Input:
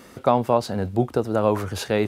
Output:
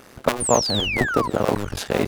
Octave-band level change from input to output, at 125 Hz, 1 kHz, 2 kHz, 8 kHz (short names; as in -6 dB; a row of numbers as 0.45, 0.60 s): -1.5, -0.5, +10.0, +14.5 dB